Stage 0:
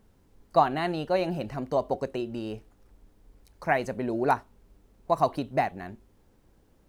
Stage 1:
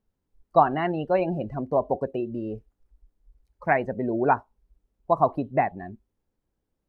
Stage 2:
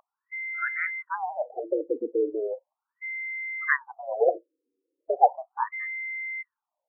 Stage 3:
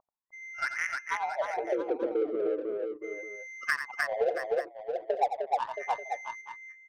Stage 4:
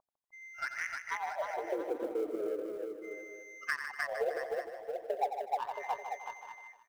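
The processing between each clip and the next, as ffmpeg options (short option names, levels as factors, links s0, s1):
-filter_complex "[0:a]acrossover=split=3800[s0][s1];[s1]acompressor=threshold=0.00158:ratio=4:attack=1:release=60[s2];[s0][s2]amix=inputs=2:normalize=0,afftdn=nr=21:nf=-36,volume=1.41"
-af "aeval=exprs='val(0)+0.0178*sin(2*PI*2000*n/s)':c=same,afreqshift=81,afftfilt=real='re*between(b*sr/1024,360*pow(1900/360,0.5+0.5*sin(2*PI*0.37*pts/sr))/1.41,360*pow(1900/360,0.5+0.5*sin(2*PI*0.37*pts/sr))*1.41)':imag='im*between(b*sr/1024,360*pow(1900/360,0.5+0.5*sin(2*PI*0.37*pts/sr))/1.41,360*pow(1900/360,0.5+0.5*sin(2*PI*0.37*pts/sr))*1.41)':win_size=1024:overlap=0.75,volume=1.68"
-filter_complex "[0:a]adynamicsmooth=sensitivity=2:basefreq=560,asplit=2[s0][s1];[s1]aecho=0:1:87|305|673|885:0.299|0.631|0.266|0.15[s2];[s0][s2]amix=inputs=2:normalize=0,acompressor=threshold=0.0501:ratio=3"
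-filter_complex "[0:a]acrusher=bits=8:mode=log:mix=0:aa=0.000001,asplit=2[s0][s1];[s1]aecho=0:1:153|306|459|612|765:0.355|0.17|0.0817|0.0392|0.0188[s2];[s0][s2]amix=inputs=2:normalize=0,volume=0.531"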